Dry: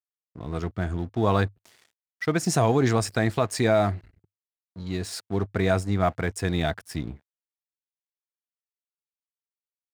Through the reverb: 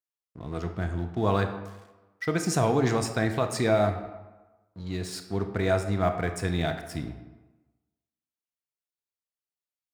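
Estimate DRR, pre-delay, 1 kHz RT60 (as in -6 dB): 6.5 dB, 23 ms, 1.2 s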